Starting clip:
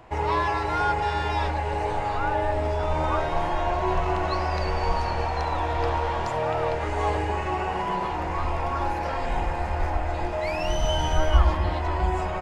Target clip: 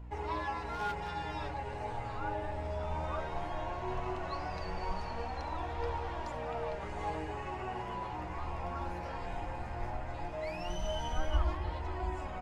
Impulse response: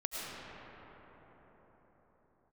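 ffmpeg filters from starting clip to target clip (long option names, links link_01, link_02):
-filter_complex "[0:a]asettb=1/sr,asplit=3[link_01][link_02][link_03];[link_01]atrim=end=0.694[link_04];[link_02]atrim=start=0.69:end=1.1,asetpts=PTS-STARTPTS,afade=type=in:duration=0.004:curve=qsin,afade=type=out:start_time=0.406:duration=0.004:curve=qsin,aeval=exprs='0.126*(abs(mod(val(0)/0.126+3,4)-2)-1)':channel_layout=same[link_05];[link_03]atrim=start=1.096[link_06];[link_04][link_05]acrossfade=duration=0.004:curve1=hsin:curve2=qsin[link_07];[link_07][link_06]acrossfade=duration=0.004:curve1=qsin:curve2=hsin,aeval=exprs='val(0)+0.0224*(sin(2*PI*60*n/s)+sin(2*PI*2*60*n/s)/2+sin(2*PI*3*60*n/s)/3+sin(2*PI*4*60*n/s)/4+sin(2*PI*5*60*n/s)/5)':channel_layout=same,flanger=delay=2:depth=9.8:regen=41:speed=0.17:shape=triangular,volume=-8.5dB"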